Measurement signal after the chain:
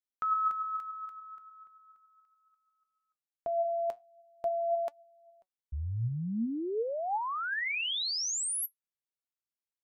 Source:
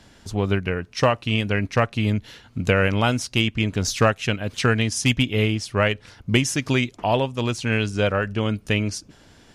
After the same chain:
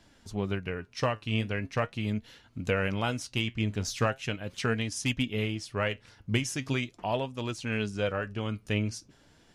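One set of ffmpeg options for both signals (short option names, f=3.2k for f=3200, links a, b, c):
-af "flanger=delay=2.9:depth=6.8:regen=72:speed=0.4:shape=triangular,volume=-5dB"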